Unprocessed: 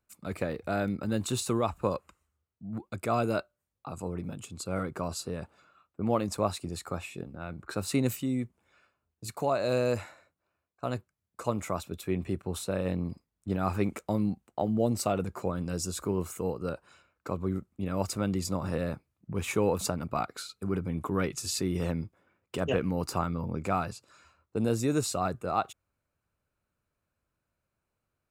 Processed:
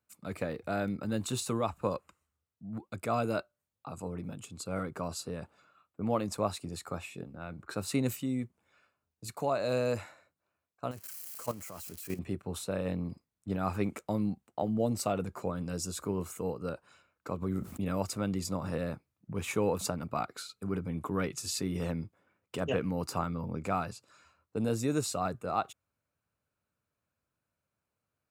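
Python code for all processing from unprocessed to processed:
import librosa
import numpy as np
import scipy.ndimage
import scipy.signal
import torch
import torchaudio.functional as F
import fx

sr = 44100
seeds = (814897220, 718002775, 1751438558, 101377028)

y = fx.chain(x, sr, fx.crossing_spikes(level_db=-27.5),
    fx.notch(hz=3600.0, q=5.4),
    fx.level_steps(step_db=14), at=(10.91, 12.19))
y = fx.chain(y, sr, fx.high_shelf(hz=8400.0, db=6.5),
    fx.env_flatten(amount_pct=70), at=(17.42, 18.0))
y = scipy.signal.sosfilt(scipy.signal.butter(2, 78.0, 'highpass', fs=sr, output='sos'), y)
y = fx.notch(y, sr, hz=360.0, q=12.0)
y = F.gain(torch.from_numpy(y), -2.5).numpy()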